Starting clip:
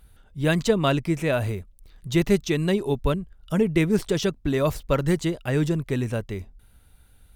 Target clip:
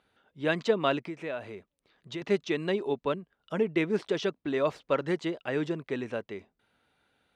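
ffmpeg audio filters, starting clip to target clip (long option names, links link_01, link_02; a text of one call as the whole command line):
ffmpeg -i in.wav -filter_complex "[0:a]asettb=1/sr,asplit=3[link_01][link_02][link_03];[link_01]atrim=end=1.004[link_04];[link_02]atrim=start=1:end=2.22,asetpts=PTS-STARTPTS,afade=type=in:duration=0.004:curve=qsin,afade=type=out:start_time=1.216:duration=0.004:curve=qsin,acompressor=threshold=-27dB:ratio=6[link_05];[link_03]atrim=start=2.216[link_06];[link_04][link_05]acrossfade=duration=0.004:curve1=hsin:curve2=qsin[link_07];[link_07][link_06]acrossfade=duration=0.004:curve1=qsin:curve2=hsin,highpass=300,lowpass=3600,volume=-3dB" out.wav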